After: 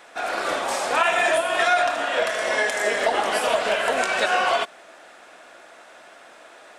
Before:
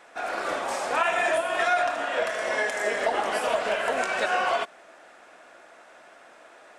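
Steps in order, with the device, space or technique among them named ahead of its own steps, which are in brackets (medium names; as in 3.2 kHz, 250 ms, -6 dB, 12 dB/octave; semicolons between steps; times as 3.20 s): presence and air boost (peaking EQ 3.7 kHz +4 dB 0.88 oct; treble shelf 9 kHz +6.5 dB); trim +3.5 dB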